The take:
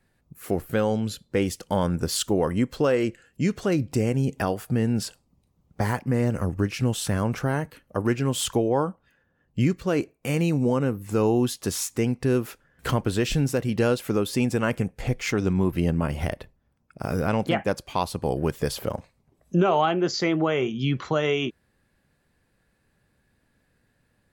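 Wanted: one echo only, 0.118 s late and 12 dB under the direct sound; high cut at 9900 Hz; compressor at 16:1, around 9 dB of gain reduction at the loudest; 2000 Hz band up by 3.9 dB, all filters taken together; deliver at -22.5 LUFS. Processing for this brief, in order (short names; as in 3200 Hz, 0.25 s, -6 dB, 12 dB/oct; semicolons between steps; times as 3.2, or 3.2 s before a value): LPF 9900 Hz; bell 2000 Hz +5 dB; compressor 16:1, threshold -26 dBFS; echo 0.118 s -12 dB; gain +9.5 dB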